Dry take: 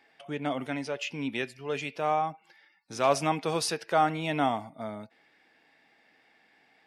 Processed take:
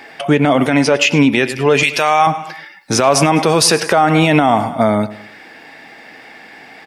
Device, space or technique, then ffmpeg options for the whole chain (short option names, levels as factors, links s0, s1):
mastering chain: -filter_complex "[0:a]asettb=1/sr,asplit=3[s0][s1][s2];[s0]atrim=end=1.834[s3];[s1]atrim=start=1.83:end=2.27,asetpts=PTS-STARTPTS,afade=t=in:d=0.004:c=qsin,afade=t=out:st=0.436:d=0.004:c=qsin,tiltshelf=f=1200:g=-10[s4];[s2]atrim=start=2.266[s5];[s3][s4]acrossfade=d=0.004:c1=hsin:c2=qsin[s6];[s6][s5]acrossfade=d=0.004:c1=qsin:c2=hsin,equalizer=f=3500:t=o:w=0.77:g=-3,aecho=1:1:105|210|315:0.119|0.0511|0.022,acompressor=threshold=0.0158:ratio=1.5,alimiter=level_in=22.4:limit=0.891:release=50:level=0:latency=1,volume=0.891"